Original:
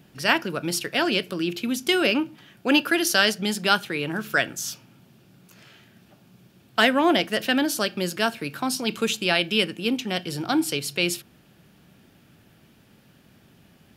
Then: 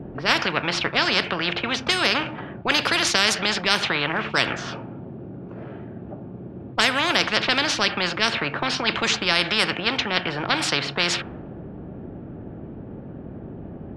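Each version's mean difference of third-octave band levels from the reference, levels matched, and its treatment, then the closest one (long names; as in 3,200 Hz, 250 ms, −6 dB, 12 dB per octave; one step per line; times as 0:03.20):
10.5 dB: low-pass that shuts in the quiet parts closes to 540 Hz, open at −16 dBFS
Bessel low-pass filter 3,000 Hz, order 2
dynamic equaliser 1,800 Hz, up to +6 dB, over −37 dBFS, Q 0.91
every bin compressed towards the loudest bin 4 to 1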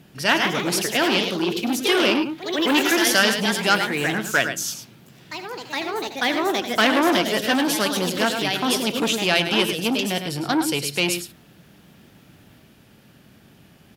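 6.5 dB: harmonic generator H 4 −30 dB, 6 −33 dB, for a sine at −3.5 dBFS
on a send: single-tap delay 106 ms −9.5 dB
on the sum: delay with pitch and tempo change per echo 173 ms, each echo +2 semitones, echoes 3, each echo −6 dB
saturating transformer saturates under 1,900 Hz
level +3.5 dB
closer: second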